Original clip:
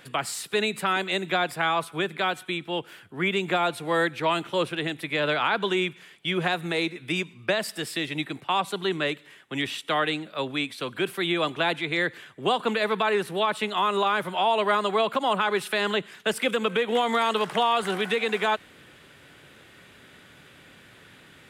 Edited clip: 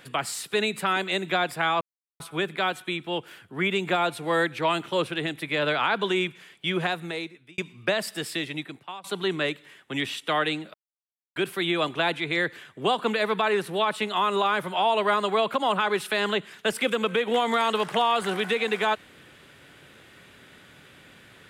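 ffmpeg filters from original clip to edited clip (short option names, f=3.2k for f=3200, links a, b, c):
-filter_complex "[0:a]asplit=6[a][b][c][d][e][f];[a]atrim=end=1.81,asetpts=PTS-STARTPTS,afade=t=out:st=1.806:d=0.004:c=hsin,apad=pad_dur=0.39[g];[b]atrim=start=1.81:end=7.19,asetpts=PTS-STARTPTS,afade=t=in:d=0.004:c=hsin,afade=t=out:st=4.55:d=0.83[h];[c]atrim=start=7.19:end=8.65,asetpts=PTS-STARTPTS,afade=t=in:d=0.004:c=hsin,afade=t=out:st=0.75:d=0.71:silence=0.0707946[i];[d]atrim=start=8.65:end=10.35,asetpts=PTS-STARTPTS,afade=t=in:d=0.004:c=hsin:silence=0.0707946,afade=t=out:st=1.696:d=0.004:c=hsin[j];[e]atrim=start=10.35:end=10.97,asetpts=PTS-STARTPTS,volume=0[k];[f]atrim=start=10.97,asetpts=PTS-STARTPTS,afade=t=in:d=0.004:c=hsin[l];[g][h][i][j][k][l]concat=n=6:v=0:a=1"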